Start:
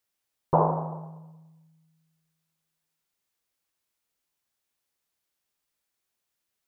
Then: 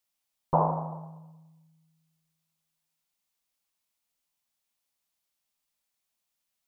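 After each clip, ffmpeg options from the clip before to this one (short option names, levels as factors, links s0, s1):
-af "equalizer=f=100:t=o:w=0.67:g=-9,equalizer=f=400:t=o:w=0.67:g=-9,equalizer=f=1600:t=o:w=0.67:g=-5"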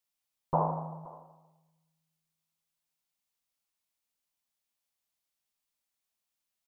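-af "aecho=1:1:522:0.0891,volume=0.631"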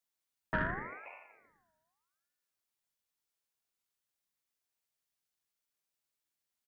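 -filter_complex "[0:a]asoftclip=type=tanh:threshold=0.0944,asplit=2[s0][s1];[s1]adelay=47,volume=0.224[s2];[s0][s2]amix=inputs=2:normalize=0,aeval=exprs='val(0)*sin(2*PI*1200*n/s+1200*0.35/0.85*sin(2*PI*0.85*n/s))':c=same"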